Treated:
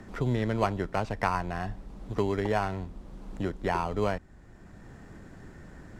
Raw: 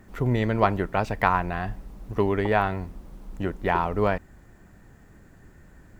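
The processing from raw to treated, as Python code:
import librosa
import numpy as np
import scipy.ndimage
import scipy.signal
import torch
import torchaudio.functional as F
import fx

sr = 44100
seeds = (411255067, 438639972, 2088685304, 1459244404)

p1 = fx.high_shelf(x, sr, hz=4400.0, db=6.0)
p2 = fx.sample_hold(p1, sr, seeds[0], rate_hz=3600.0, jitter_pct=0)
p3 = p1 + (p2 * librosa.db_to_amplitude(-7.0))
p4 = fx.air_absorb(p3, sr, metres=61.0)
p5 = fx.band_squash(p4, sr, depth_pct=40)
y = p5 * librosa.db_to_amplitude(-7.5)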